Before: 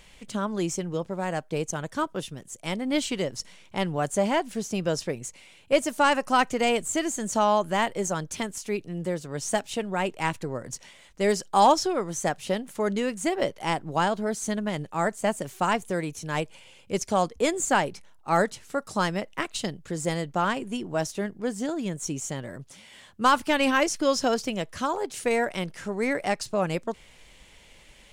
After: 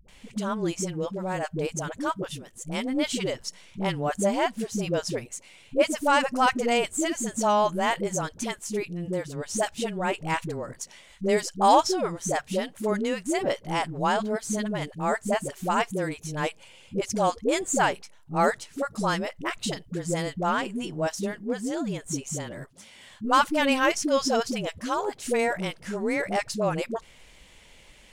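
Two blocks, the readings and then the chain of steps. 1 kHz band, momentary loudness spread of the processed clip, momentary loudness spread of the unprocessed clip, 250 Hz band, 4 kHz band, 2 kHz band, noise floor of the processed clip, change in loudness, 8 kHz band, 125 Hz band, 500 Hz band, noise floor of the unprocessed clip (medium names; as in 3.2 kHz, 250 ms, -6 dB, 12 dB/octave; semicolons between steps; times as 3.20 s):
0.0 dB, 10 LU, 10 LU, 0.0 dB, 0.0 dB, 0.0 dB, -54 dBFS, 0.0 dB, 0.0 dB, 0.0 dB, 0.0 dB, -54 dBFS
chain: phase dispersion highs, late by 85 ms, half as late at 380 Hz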